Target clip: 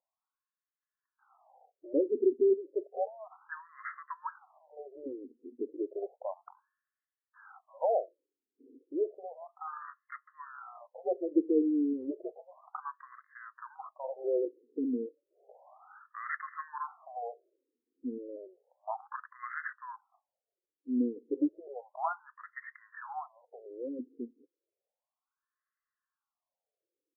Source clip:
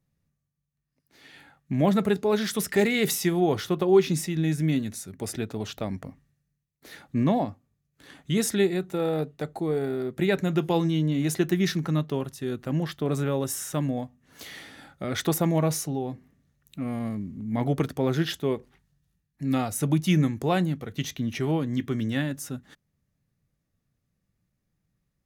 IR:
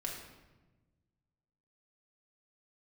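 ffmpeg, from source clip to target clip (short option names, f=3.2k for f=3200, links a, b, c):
-af "asetrate=41013,aresample=44100,afftfilt=real='re*between(b*sr/1024,340*pow(1500/340,0.5+0.5*sin(2*PI*0.32*pts/sr))/1.41,340*pow(1500/340,0.5+0.5*sin(2*PI*0.32*pts/sr))*1.41)':imag='im*between(b*sr/1024,340*pow(1500/340,0.5+0.5*sin(2*PI*0.32*pts/sr))/1.41,340*pow(1500/340,0.5+0.5*sin(2*PI*0.32*pts/sr))*1.41)':win_size=1024:overlap=0.75"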